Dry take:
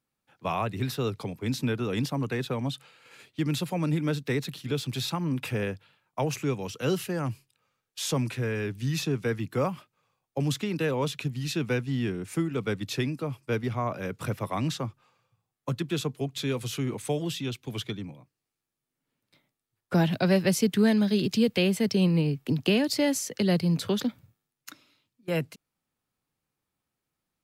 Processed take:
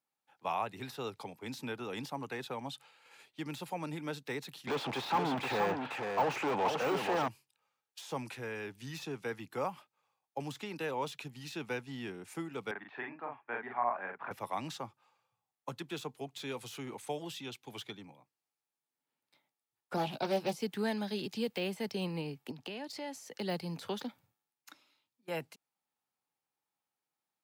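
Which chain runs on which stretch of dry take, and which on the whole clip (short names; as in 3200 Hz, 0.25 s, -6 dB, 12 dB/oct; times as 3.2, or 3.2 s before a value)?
4.67–7.28 high shelf 6600 Hz -11.5 dB + overdrive pedal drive 35 dB, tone 1100 Hz, clips at -15 dBFS + echo 0.475 s -5 dB
12.71–14.31 de-esser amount 90% + speaker cabinet 300–2200 Hz, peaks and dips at 330 Hz -4 dB, 500 Hz -8 dB, 720 Hz +5 dB, 1000 Hz +4 dB, 1700 Hz +8 dB + doubler 42 ms -3 dB
19.96–20.57 bell 1800 Hz -14.5 dB 0.33 oct + doubler 14 ms -5.5 dB + Doppler distortion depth 0.24 ms
22.51–23.17 high shelf 9300 Hz -10 dB + compressor 3:1, threshold -31 dBFS
whole clip: de-esser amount 85%; HPF 480 Hz 6 dB/oct; bell 840 Hz +9 dB 0.35 oct; gain -6.5 dB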